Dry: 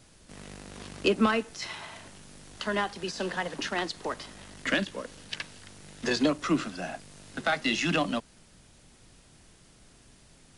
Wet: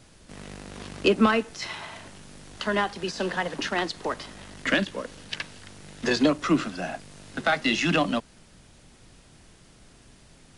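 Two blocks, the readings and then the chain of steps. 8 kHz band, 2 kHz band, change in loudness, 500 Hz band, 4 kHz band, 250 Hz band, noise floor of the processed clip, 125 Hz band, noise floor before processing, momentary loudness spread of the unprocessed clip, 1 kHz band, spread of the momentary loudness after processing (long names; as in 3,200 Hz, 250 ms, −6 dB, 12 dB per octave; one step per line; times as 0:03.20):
+1.0 dB, +3.5 dB, +3.5 dB, +4.0 dB, +3.0 dB, +4.0 dB, −54 dBFS, +4.0 dB, −58 dBFS, 19 LU, +4.0 dB, 19 LU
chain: high-shelf EQ 6,100 Hz −5 dB
level +4 dB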